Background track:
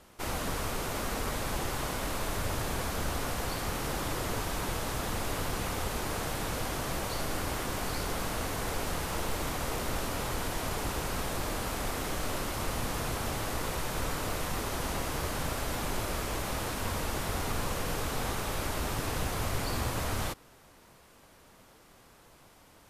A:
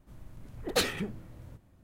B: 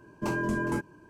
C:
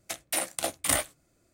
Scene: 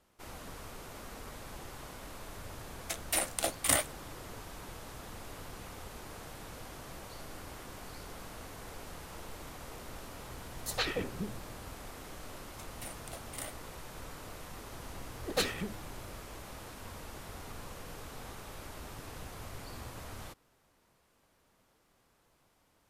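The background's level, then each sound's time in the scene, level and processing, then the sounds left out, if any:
background track -13 dB
2.80 s: add C -2 dB
9.90 s: add A -2.5 dB + three bands offset in time highs, mids, lows 120/300 ms, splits 570/5700 Hz
12.49 s: add C -17.5 dB
14.61 s: add A -3.5 dB
not used: B

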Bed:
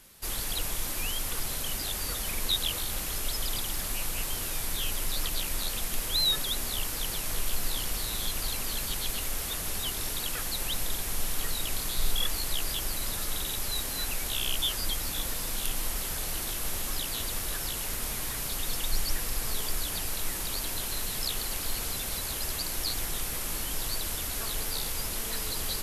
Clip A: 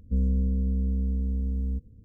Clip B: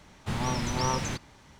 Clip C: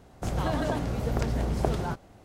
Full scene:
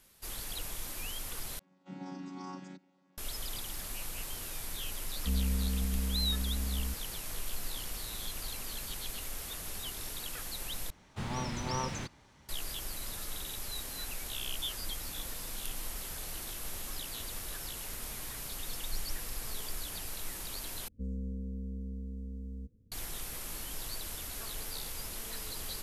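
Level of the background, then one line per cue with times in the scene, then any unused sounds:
bed -8 dB
1.59 s: replace with B -13.5 dB + vocoder on a held chord bare fifth, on F#3
5.15 s: add A -7 dB
10.90 s: replace with B -6.5 dB
20.88 s: replace with A -7 dB + bass shelf 170 Hz -8.5 dB
not used: C

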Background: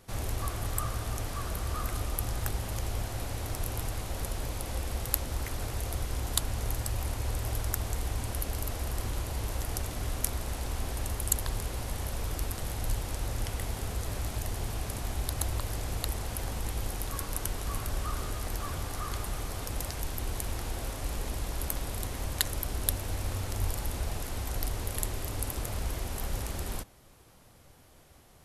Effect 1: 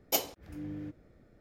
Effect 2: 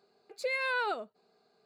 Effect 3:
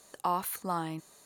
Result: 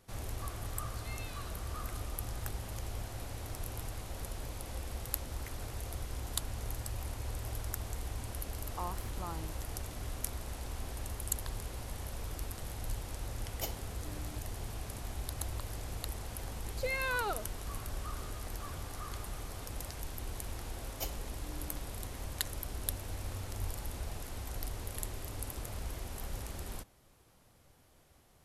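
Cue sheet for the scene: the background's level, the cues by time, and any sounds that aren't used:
background -7 dB
0.58 s: add 2 -11 dB + inverse Chebyshev band-stop 300–820 Hz, stop band 70 dB
8.53 s: add 3 -10.5 dB + low-pass 3 kHz 6 dB/octave
13.49 s: add 1 -11 dB
16.39 s: add 2 -3 dB
20.88 s: add 1 -11.5 dB

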